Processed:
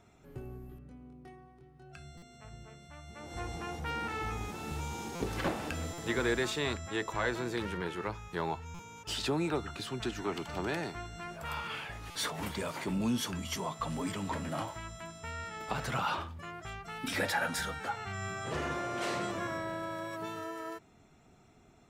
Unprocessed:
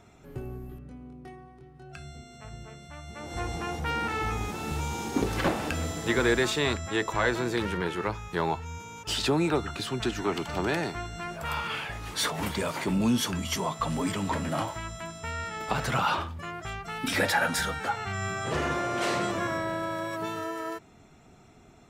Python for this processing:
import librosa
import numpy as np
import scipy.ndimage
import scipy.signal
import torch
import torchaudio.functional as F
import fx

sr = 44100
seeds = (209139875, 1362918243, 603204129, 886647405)

y = fx.buffer_glitch(x, sr, at_s=(2.17, 5.15, 5.93, 8.74, 12.1), block=256, repeats=8)
y = y * librosa.db_to_amplitude(-6.5)